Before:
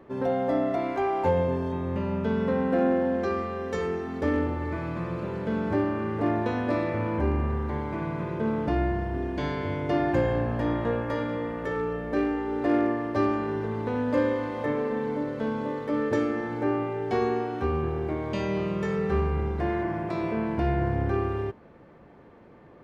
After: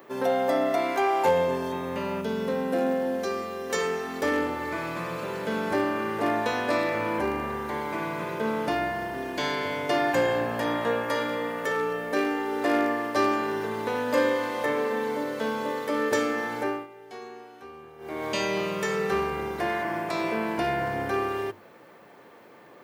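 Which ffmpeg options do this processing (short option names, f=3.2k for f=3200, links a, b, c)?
-filter_complex "[0:a]asettb=1/sr,asplit=3[a][b][c];[a]atrim=end=2.214[d];[b]atrim=start=2.21:end=3.7,asetpts=PTS-STARTPTS,afade=t=in:d=0.004:c=qsin,afade=t=out:st=1.486:d=0.004:c=qsin,equalizer=f=1.5k:w=0.5:g=-7.5[e];[c]atrim=start=3.696[f];[d][e]acrossfade=d=0.004:c1=hsin:c2=qsin[g];[g][f]acrossfade=d=0.004:c1=qsin:c2=hsin,asplit=3[h][i][j];[h]atrim=end=16.87,asetpts=PTS-STARTPTS,afade=t=out:st=16.59:d=0.28:silence=0.133352[k];[i]atrim=start=16.87:end=17.98,asetpts=PTS-STARTPTS,volume=-17.5dB[l];[j]atrim=start=17.98,asetpts=PTS-STARTPTS,afade=t=in:d=0.28:silence=0.133352[m];[k][l][m]concat=n=3:v=0:a=1,highpass=99,aemphasis=mode=production:type=riaa,bandreject=f=50:t=h:w=6,bandreject=f=100:t=h:w=6,bandreject=f=150:t=h:w=6,bandreject=f=200:t=h:w=6,bandreject=f=250:t=h:w=6,bandreject=f=300:t=h:w=6,bandreject=f=350:t=h:w=6,volume=4.5dB"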